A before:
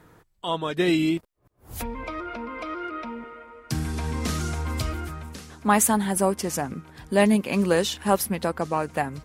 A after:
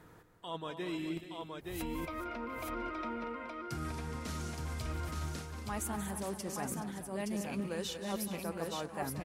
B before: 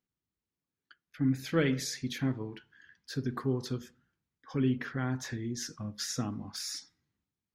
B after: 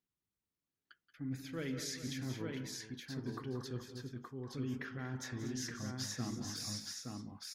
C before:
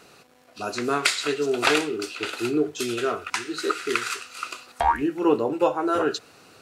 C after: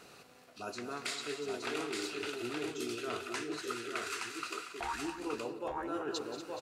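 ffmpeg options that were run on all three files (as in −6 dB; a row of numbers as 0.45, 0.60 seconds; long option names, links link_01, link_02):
-af "areverse,acompressor=threshold=-34dB:ratio=5,areverse,aecho=1:1:177|187|236|423|871:0.188|0.178|0.282|0.211|0.668,volume=-4dB"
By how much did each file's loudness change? −14.0, −8.0, −13.5 LU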